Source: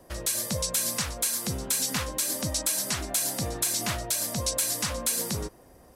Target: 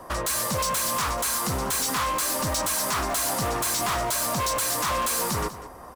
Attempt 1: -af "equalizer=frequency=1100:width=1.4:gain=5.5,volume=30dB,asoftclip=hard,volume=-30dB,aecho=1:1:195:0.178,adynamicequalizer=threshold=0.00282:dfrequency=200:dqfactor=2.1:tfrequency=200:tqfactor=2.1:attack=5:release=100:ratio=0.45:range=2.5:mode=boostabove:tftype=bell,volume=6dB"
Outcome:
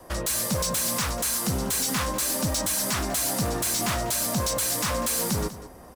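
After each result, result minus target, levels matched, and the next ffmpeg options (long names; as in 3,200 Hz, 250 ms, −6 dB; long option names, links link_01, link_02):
1,000 Hz band −5.5 dB; 250 Hz band +4.0 dB
-af "equalizer=frequency=1100:width=1.4:gain=16,volume=30dB,asoftclip=hard,volume=-30dB,aecho=1:1:195:0.178,adynamicequalizer=threshold=0.00282:dfrequency=200:dqfactor=2.1:tfrequency=200:tqfactor=2.1:attack=5:release=100:ratio=0.45:range=2.5:mode=boostabove:tftype=bell,volume=6dB"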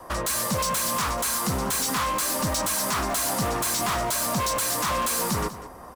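250 Hz band +3.0 dB
-af "equalizer=frequency=1100:width=1.4:gain=16,volume=30dB,asoftclip=hard,volume=-30dB,aecho=1:1:195:0.178,volume=6dB"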